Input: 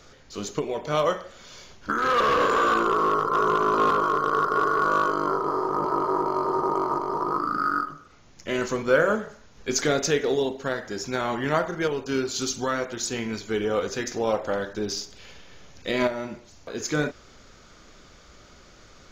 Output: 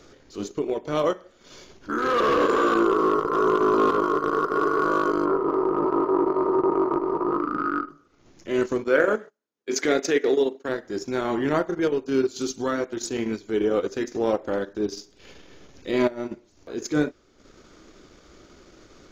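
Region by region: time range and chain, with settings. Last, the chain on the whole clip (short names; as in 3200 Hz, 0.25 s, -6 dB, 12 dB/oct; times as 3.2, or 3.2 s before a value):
5.25–7.89 LPF 2500 Hz + echo 0.24 s -14.5 dB
8.84–10.69 gate -40 dBFS, range -23 dB + dynamic EQ 2000 Hz, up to +7 dB, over -42 dBFS, Q 2.1 + HPF 250 Hz
whole clip: bell 330 Hz +11 dB 0.96 oct; transient shaper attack -7 dB, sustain -11 dB; gain -1.5 dB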